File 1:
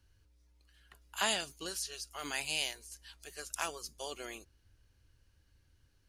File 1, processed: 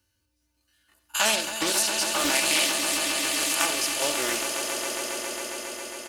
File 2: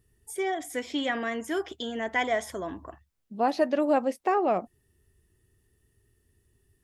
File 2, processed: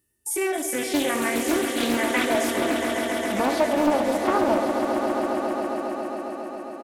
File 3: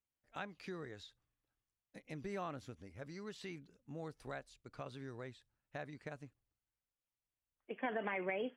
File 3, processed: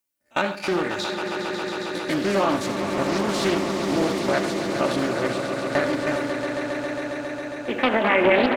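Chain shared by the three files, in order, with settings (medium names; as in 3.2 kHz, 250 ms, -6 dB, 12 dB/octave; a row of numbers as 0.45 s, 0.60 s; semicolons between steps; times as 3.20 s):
spectrogram pixelated in time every 50 ms; high-pass 120 Hz 12 dB/octave; reverb removal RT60 0.55 s; band-stop 3.4 kHz, Q 19; gate -59 dBFS, range -15 dB; treble shelf 6.7 kHz +9.5 dB; comb 3.4 ms, depth 58%; compression 2:1, threshold -40 dBFS; echo with a slow build-up 136 ms, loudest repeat 5, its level -9 dB; gated-style reverb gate 110 ms rising, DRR 8.5 dB; loudspeaker Doppler distortion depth 0.39 ms; normalise loudness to -24 LUFS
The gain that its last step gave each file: +15.0 dB, +12.0 dB, +23.0 dB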